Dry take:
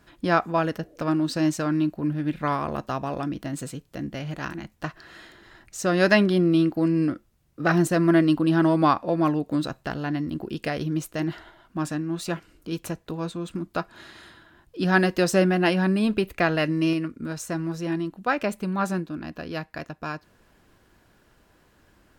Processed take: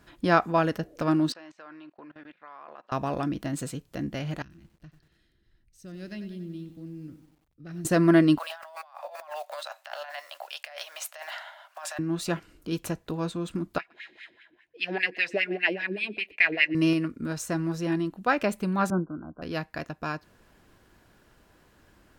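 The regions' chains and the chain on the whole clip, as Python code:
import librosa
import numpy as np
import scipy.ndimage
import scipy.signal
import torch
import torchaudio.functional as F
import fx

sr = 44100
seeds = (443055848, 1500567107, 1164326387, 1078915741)

y = fx.chain(x, sr, fx.bandpass_edges(low_hz=690.0, high_hz=2900.0),
    fx.level_steps(step_db=23), at=(1.32, 2.92))
y = fx.chain(y, sr, fx.tone_stack(knobs='10-0-1'),
    fx.notch(hz=7100.0, q=6.0),
    fx.echo_crushed(ms=94, feedback_pct=55, bits=10, wet_db=-11), at=(4.42, 7.85))
y = fx.chain(y, sr, fx.block_float(bits=7),
    fx.cheby_ripple_highpass(hz=570.0, ripple_db=3),
    fx.over_compress(threshold_db=-41.0, ratio=-1.0), at=(8.38, 11.99))
y = fx.chain(y, sr, fx.high_shelf_res(hz=1700.0, db=9.5, q=3.0),
    fx.wah_lfo(hz=5.0, low_hz=320.0, high_hz=2300.0, q=3.5),
    fx.echo_single(ms=120, db=-24.0), at=(13.78, 16.75))
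y = fx.chain(y, sr, fx.brickwall_lowpass(high_hz=1600.0),
    fx.band_widen(depth_pct=100), at=(18.9, 19.42))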